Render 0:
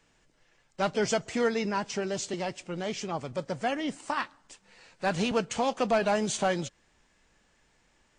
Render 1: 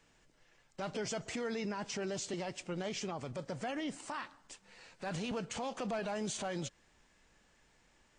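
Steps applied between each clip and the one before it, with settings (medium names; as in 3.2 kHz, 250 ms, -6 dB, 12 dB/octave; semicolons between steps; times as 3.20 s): peak limiter -29 dBFS, peak gain reduction 11.5 dB; trim -1.5 dB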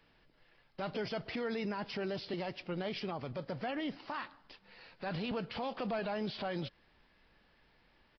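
resampled via 11.025 kHz; trim +1 dB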